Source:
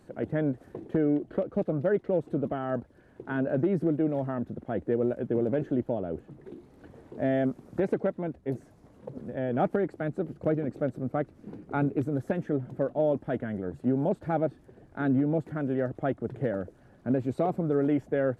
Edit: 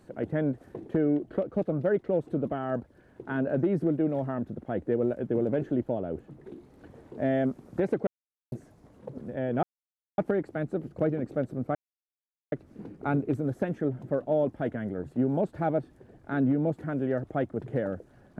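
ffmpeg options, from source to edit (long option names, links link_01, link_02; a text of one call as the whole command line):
ffmpeg -i in.wav -filter_complex "[0:a]asplit=5[link_01][link_02][link_03][link_04][link_05];[link_01]atrim=end=8.07,asetpts=PTS-STARTPTS,afade=type=out:start_time=8.066:duration=0.004:curve=hsin[link_06];[link_02]atrim=start=8.07:end=8.52,asetpts=PTS-STARTPTS,volume=0[link_07];[link_03]atrim=start=8.52:end=9.63,asetpts=PTS-STARTPTS,afade=type=in:duration=0.004:curve=hsin,afade=type=out:start_time=1.106:duration=0.004:curve=hsin,apad=pad_dur=0.55[link_08];[link_04]atrim=start=9.63:end=11.2,asetpts=PTS-STARTPTS,afade=type=in:duration=0.004:curve=hsin,afade=type=out:start_time=1.566:duration=0.004:curve=hsin,apad=pad_dur=0.77[link_09];[link_05]atrim=start=11.2,asetpts=PTS-STARTPTS,afade=type=in:duration=0.004:curve=hsin[link_10];[link_06][link_07][link_08][link_09][link_10]concat=n=5:v=0:a=1" out.wav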